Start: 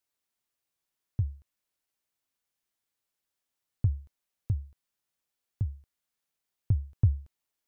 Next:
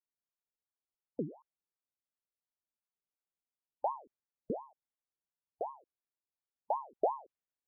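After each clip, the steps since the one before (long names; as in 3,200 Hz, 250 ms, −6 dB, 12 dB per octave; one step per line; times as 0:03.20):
low-pass that shuts in the quiet parts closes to 630 Hz, open at −24 dBFS
gate on every frequency bin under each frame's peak −25 dB strong
ring modulator whose carrier an LFO sweeps 620 Hz, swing 65%, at 2.8 Hz
level −5.5 dB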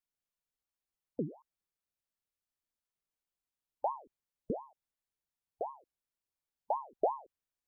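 low-shelf EQ 84 Hz +11 dB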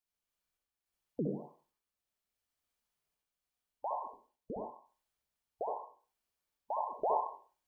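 brickwall limiter −28.5 dBFS, peak gain reduction 10 dB
sample-and-hold tremolo
convolution reverb RT60 0.40 s, pre-delay 61 ms, DRR −0.5 dB
level +3.5 dB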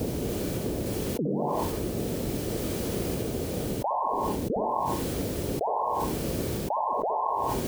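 brickwall limiter −30.5 dBFS, peak gain reduction 10 dB
noise in a band 39–490 Hz −79 dBFS
envelope flattener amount 100%
level +8.5 dB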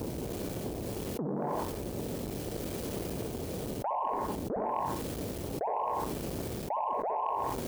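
saturating transformer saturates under 580 Hz
level −4 dB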